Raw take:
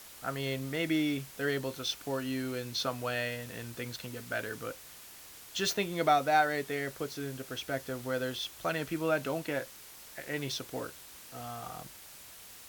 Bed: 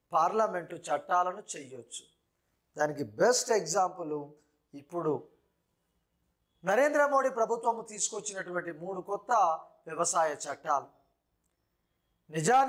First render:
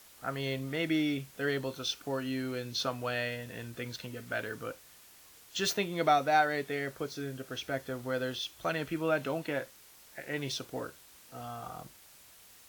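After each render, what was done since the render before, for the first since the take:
noise reduction from a noise print 6 dB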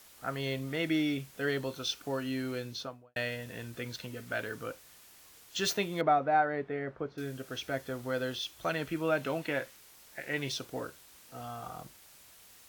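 0:02.56–0:03.16: fade out and dull
0:06.01–0:07.18: low-pass filter 1,500 Hz
0:09.25–0:10.49: dynamic equaliser 2,200 Hz, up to +4 dB, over −51 dBFS, Q 1.1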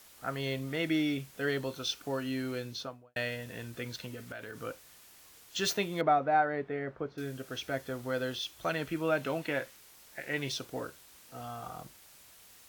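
0:04.14–0:04.61: downward compressor 12 to 1, threshold −38 dBFS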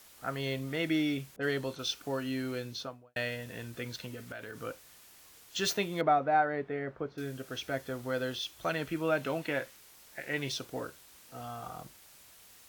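0:01.36–0:01.79: low-pass that shuts in the quiet parts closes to 420 Hz, open at −31.5 dBFS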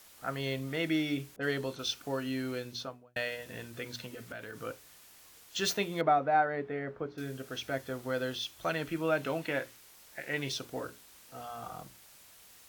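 mains-hum notches 60/120/180/240/300/360/420 Hz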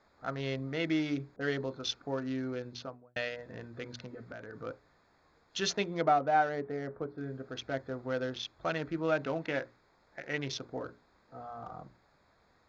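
adaptive Wiener filter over 15 samples
Butterworth low-pass 6,800 Hz 72 dB per octave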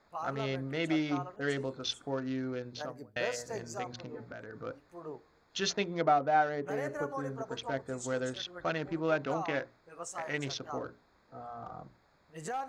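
mix in bed −13 dB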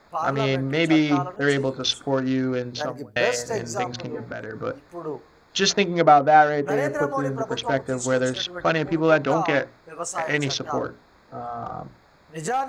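level +12 dB

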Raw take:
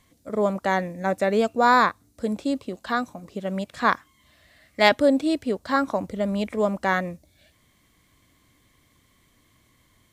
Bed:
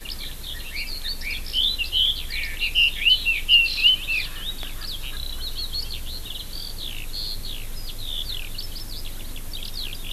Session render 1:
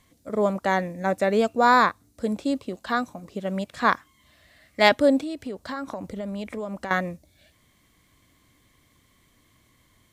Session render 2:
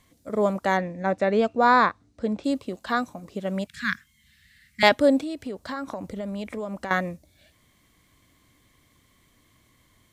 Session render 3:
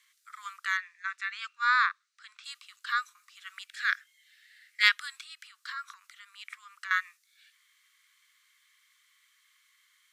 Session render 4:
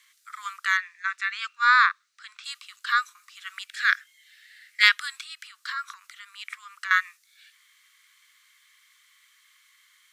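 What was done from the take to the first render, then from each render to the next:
0:05.22–0:06.91: downward compressor 5 to 1, threshold −29 dBFS
0:00.77–0:02.44: high-frequency loss of the air 110 metres; 0:03.67–0:04.83: Chebyshev band-stop filter 210–1,600 Hz, order 3
Butterworth high-pass 1,200 Hz 72 dB per octave; high-shelf EQ 8,600 Hz −6 dB
level +6.5 dB; brickwall limiter −3 dBFS, peak gain reduction 3 dB

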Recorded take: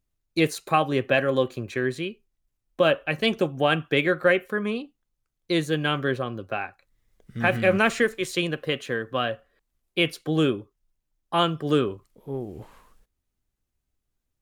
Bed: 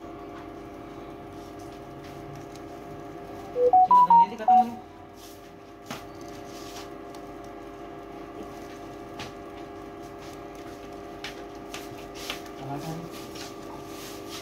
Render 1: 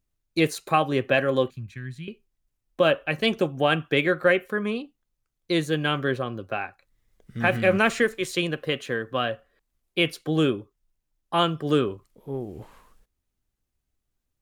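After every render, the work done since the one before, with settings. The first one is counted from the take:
0:01.50–0:02.08: drawn EQ curve 170 Hz 0 dB, 450 Hz −29 dB, 1,800 Hz −11 dB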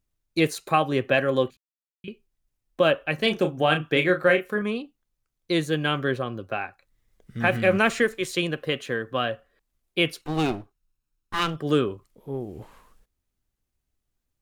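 0:01.57–0:02.04: silence
0:03.16–0:04.62: double-tracking delay 33 ms −7.5 dB
0:10.21–0:11.56: lower of the sound and its delayed copy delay 0.74 ms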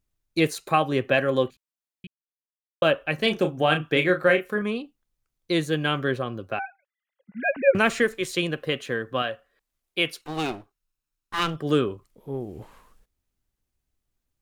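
0:02.07–0:02.82: silence
0:06.59–0:07.75: three sine waves on the formant tracks
0:09.22–0:11.38: low-shelf EQ 370 Hz −8.5 dB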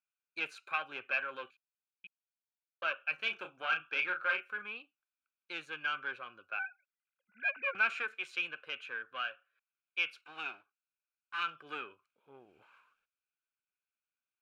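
one-sided soft clipper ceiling −19 dBFS
pair of resonant band-passes 1,900 Hz, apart 0.71 octaves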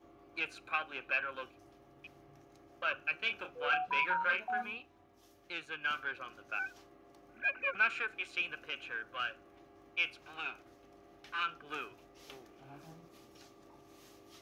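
mix in bed −19.5 dB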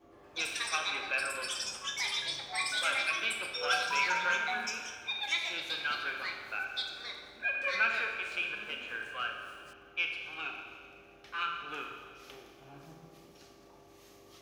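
four-comb reverb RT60 1.8 s, combs from 28 ms, DRR 2.5 dB
delay with pitch and tempo change per echo 113 ms, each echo +7 semitones, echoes 3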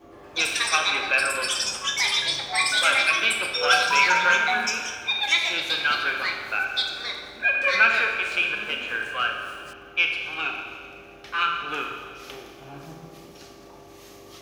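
level +11 dB

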